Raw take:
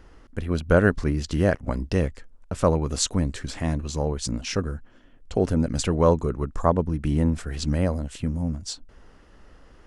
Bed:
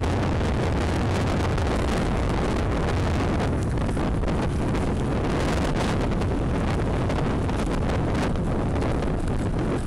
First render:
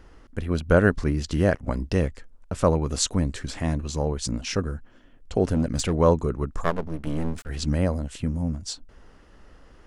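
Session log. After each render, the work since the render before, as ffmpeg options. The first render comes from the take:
-filter_complex "[0:a]asettb=1/sr,asplit=3[a][b][c];[a]atrim=end=5.544[d];[b]atrim=start=5.54:end=5.97,asetpts=PTS-STARTPTS,afade=t=in:d=0.004:c=qsin,afade=t=out:st=0.426:d=0.004:c=qsin,volume=16.5dB,asoftclip=hard,volume=-16.5dB[e];[c]atrim=start=5.966[f];[d][e]acrossfade=d=0.004:c1=hsin:c2=qsin[g];[g][f]acrossfade=d=0.004:c1=qsin:c2=hsin,asettb=1/sr,asplit=3[h][i][j];[h]atrim=end=6.604[k];[i]atrim=start=6.6:end=7.49,asetpts=PTS-STARTPTS,afade=t=in:d=0.004:c=qsin,afade=t=out:st=0.886:d=0.004:c=qsin,aeval=exprs='max(val(0),0)':c=same[l];[j]atrim=start=7.486[m];[k][l]acrossfade=d=0.004:c1=hsin:c2=qsin[n];[n][m]acrossfade=d=0.004:c1=qsin:c2=hsin"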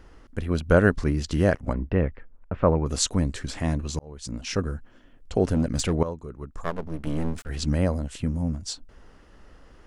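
-filter_complex "[0:a]asplit=3[a][b][c];[a]afade=t=out:st=1.72:d=0.02[d];[b]lowpass=f=2.4k:w=0.5412,lowpass=f=2.4k:w=1.3066,afade=t=in:st=1.72:d=0.02,afade=t=out:st=2.85:d=0.02[e];[c]afade=t=in:st=2.85:d=0.02[f];[d][e][f]amix=inputs=3:normalize=0,asplit=3[g][h][i];[g]atrim=end=3.99,asetpts=PTS-STARTPTS,afade=t=out:st=3.986:d=0.004:c=hsin[j];[h]atrim=start=3.99:end=6.03,asetpts=PTS-STARTPTS,afade=t=in:d=0.62,afade=t=out:st=2.036:d=0.004:c=hsin:silence=0.188365[k];[i]atrim=start=6.03,asetpts=PTS-STARTPTS,afade=t=in:d=0.98:c=qua:silence=0.188365[l];[j][k][l]concat=n=3:v=0:a=1"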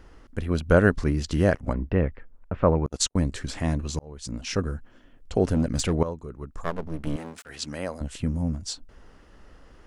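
-filter_complex "[0:a]asettb=1/sr,asplit=3[a][b][c];[a]atrim=end=2.864[d];[b]atrim=start=2.86:end=3.32,asetpts=PTS-STARTPTS,afade=t=in:d=0.004:c=qsin,afade=t=out:st=0.456:d=0.004:c=qsin,agate=range=-45dB:threshold=-27dB:ratio=16:release=100:detection=peak[e];[c]atrim=start=3.316[f];[d][e]acrossfade=d=0.004:c1=hsin:c2=qsin[g];[g][f]acrossfade=d=0.004:c1=qsin:c2=hsin,asettb=1/sr,asplit=3[h][i][j];[h]atrim=end=7.164[k];[i]atrim=start=7.16:end=8.01,asetpts=PTS-STARTPTS,afade=t=in:d=0.004:c=qsin,afade=t=out:st=0.846:d=0.004:c=qsin,highpass=f=770:p=1[l];[j]atrim=start=8.006[m];[k][l]acrossfade=d=0.004:c1=hsin:c2=qsin[n];[n][m]acrossfade=d=0.004:c1=qsin:c2=hsin"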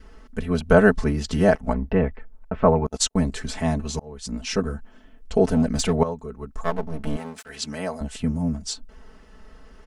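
-af "aecho=1:1:4.6:0.93,adynamicequalizer=threshold=0.0112:dfrequency=770:dqfactor=2.7:tfrequency=770:tqfactor=2.7:attack=5:release=100:ratio=0.375:range=3.5:mode=boostabove:tftype=bell"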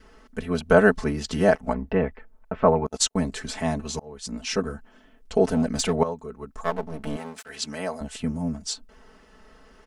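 -af "lowshelf=f=150:g=-9.5"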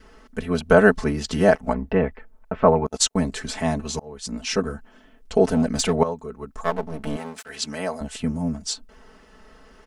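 -af "volume=2.5dB,alimiter=limit=-2dB:level=0:latency=1"

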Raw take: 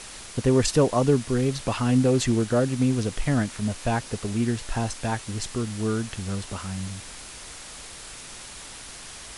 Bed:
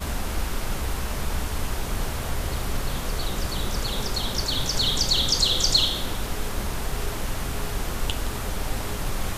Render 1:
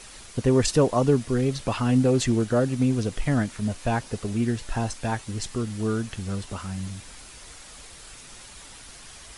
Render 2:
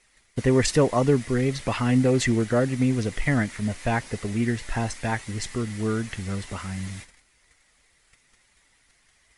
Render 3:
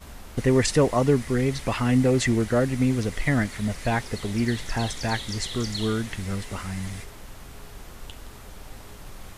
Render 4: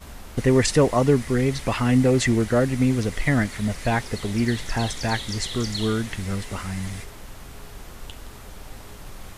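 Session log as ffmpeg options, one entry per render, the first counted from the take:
-af "afftdn=nr=6:nf=-42"
-af "agate=range=-20dB:threshold=-40dB:ratio=16:detection=peak,equalizer=f=2k:w=3.8:g=11.5"
-filter_complex "[1:a]volume=-14dB[a];[0:a][a]amix=inputs=2:normalize=0"
-af "volume=2dB"

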